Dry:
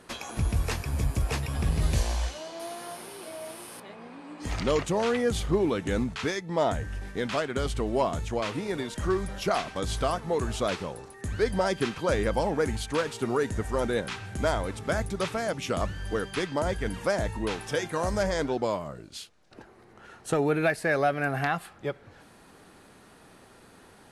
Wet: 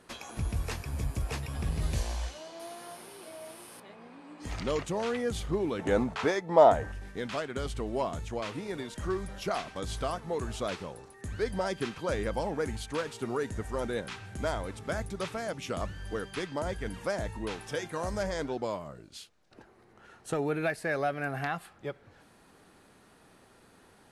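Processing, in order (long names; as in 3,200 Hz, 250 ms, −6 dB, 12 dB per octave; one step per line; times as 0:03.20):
0:05.79–0:06.92: parametric band 720 Hz +13.5 dB 2.1 octaves
level −5.5 dB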